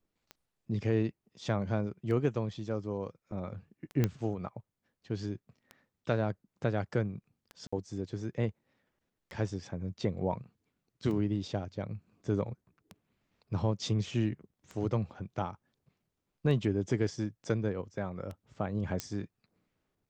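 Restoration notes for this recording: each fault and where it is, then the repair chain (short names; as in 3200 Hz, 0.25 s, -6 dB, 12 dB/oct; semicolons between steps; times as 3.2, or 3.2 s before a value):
tick 33 1/3 rpm -29 dBFS
4.04 pop -15 dBFS
7.67–7.72 gap 55 ms
19 pop -17 dBFS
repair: de-click; interpolate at 7.67, 55 ms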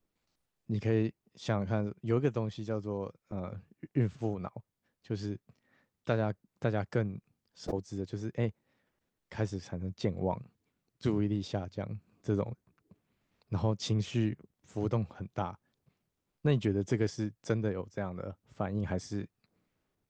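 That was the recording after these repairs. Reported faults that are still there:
19 pop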